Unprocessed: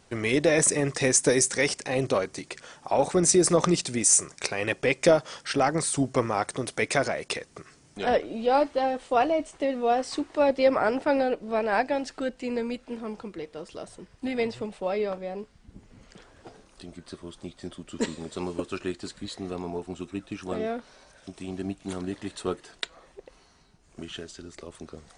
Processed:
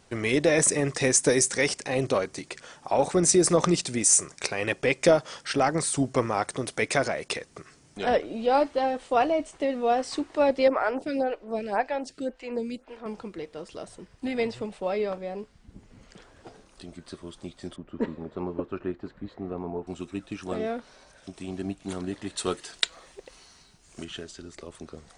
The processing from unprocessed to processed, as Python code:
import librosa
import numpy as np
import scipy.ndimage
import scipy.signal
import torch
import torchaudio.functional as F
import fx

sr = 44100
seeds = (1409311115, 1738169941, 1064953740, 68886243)

y = fx.stagger_phaser(x, sr, hz=1.9, at=(10.68, 13.06))
y = fx.lowpass(y, sr, hz=1400.0, slope=12, at=(17.76, 19.87))
y = fx.high_shelf(y, sr, hz=2100.0, db=11.0, at=(22.37, 24.03), fade=0.02)